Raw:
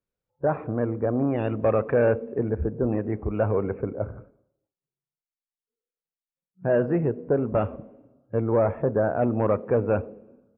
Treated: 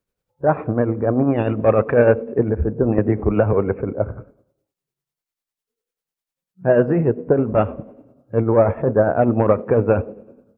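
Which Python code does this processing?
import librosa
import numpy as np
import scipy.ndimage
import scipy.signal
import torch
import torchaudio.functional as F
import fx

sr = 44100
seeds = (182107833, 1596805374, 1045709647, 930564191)

y = x * (1.0 - 0.51 / 2.0 + 0.51 / 2.0 * np.cos(2.0 * np.pi * 10.0 * (np.arange(len(x)) / sr)))
y = fx.band_squash(y, sr, depth_pct=100, at=(2.98, 3.53))
y = F.gain(torch.from_numpy(y), 9.0).numpy()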